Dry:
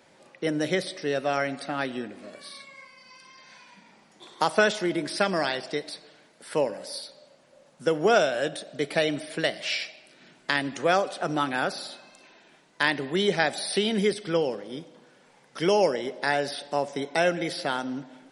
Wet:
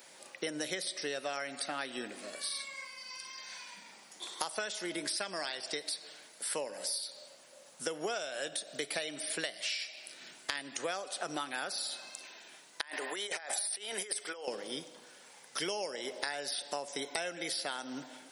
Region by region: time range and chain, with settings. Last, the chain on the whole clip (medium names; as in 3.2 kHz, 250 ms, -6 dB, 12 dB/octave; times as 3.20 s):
12.81–14.48 s: high-pass 590 Hz + peaking EQ 4 kHz -9.5 dB 1.3 oct + compressor with a negative ratio -38 dBFS
whole clip: RIAA curve recording; compression 12:1, threshold -33 dBFS